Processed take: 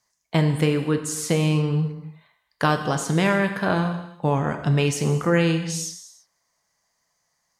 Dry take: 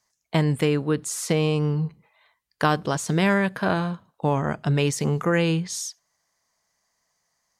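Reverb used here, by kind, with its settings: gated-style reverb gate 370 ms falling, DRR 6 dB

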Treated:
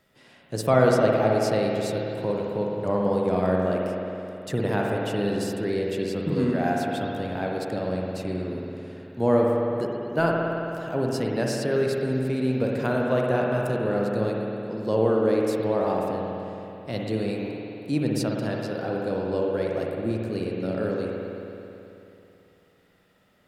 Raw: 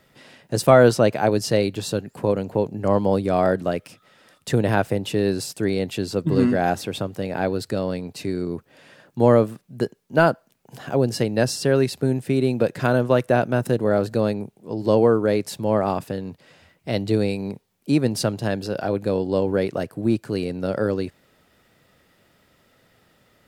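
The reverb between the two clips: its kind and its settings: spring tank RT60 3 s, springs 54 ms, chirp 70 ms, DRR -1.5 dB; trim -7.5 dB

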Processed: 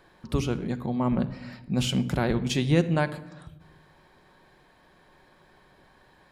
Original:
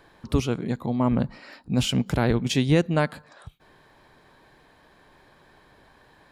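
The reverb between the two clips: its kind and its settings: simulated room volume 3800 m³, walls furnished, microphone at 1 m; trim -3 dB

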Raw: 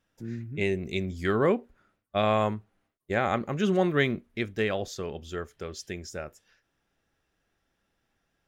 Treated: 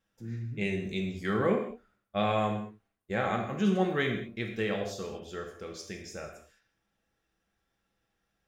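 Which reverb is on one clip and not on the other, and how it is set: gated-style reverb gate 240 ms falling, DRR 1.5 dB; trim -5.5 dB

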